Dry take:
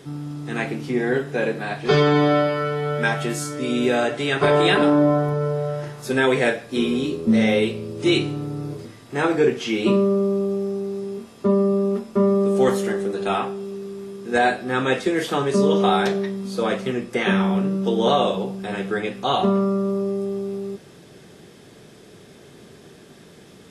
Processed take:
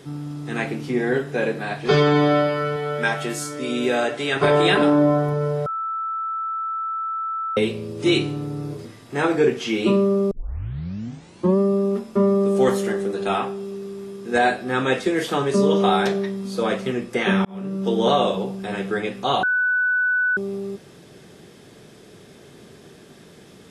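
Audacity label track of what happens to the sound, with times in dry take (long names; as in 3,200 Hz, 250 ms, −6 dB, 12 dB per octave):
2.760000	4.360000	low-shelf EQ 160 Hz −9.5 dB
5.660000	7.570000	beep over 1,320 Hz −23.5 dBFS
10.310000	10.310000	tape start 1.27 s
17.450000	17.910000	fade in
19.430000	20.370000	beep over 1,490 Hz −17 dBFS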